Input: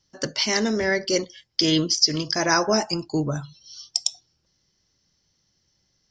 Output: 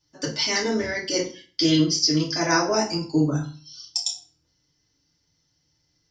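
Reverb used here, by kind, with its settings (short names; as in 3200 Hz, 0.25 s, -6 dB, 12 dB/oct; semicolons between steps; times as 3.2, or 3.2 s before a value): FDN reverb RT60 0.37 s, low-frequency decay 1.25×, high-frequency decay 0.9×, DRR -4.5 dB; gain -6.5 dB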